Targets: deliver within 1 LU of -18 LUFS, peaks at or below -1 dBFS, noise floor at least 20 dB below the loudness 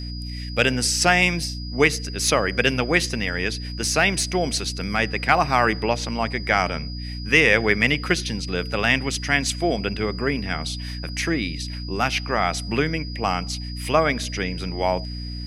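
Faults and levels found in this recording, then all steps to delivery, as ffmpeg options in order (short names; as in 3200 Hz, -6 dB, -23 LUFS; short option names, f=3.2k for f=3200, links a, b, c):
hum 60 Hz; harmonics up to 300 Hz; hum level -29 dBFS; steady tone 4900 Hz; tone level -37 dBFS; loudness -22.0 LUFS; peak -2.0 dBFS; loudness target -18.0 LUFS
-> -af "bandreject=f=60:t=h:w=6,bandreject=f=120:t=h:w=6,bandreject=f=180:t=h:w=6,bandreject=f=240:t=h:w=6,bandreject=f=300:t=h:w=6"
-af "bandreject=f=4.9k:w=30"
-af "volume=4dB,alimiter=limit=-1dB:level=0:latency=1"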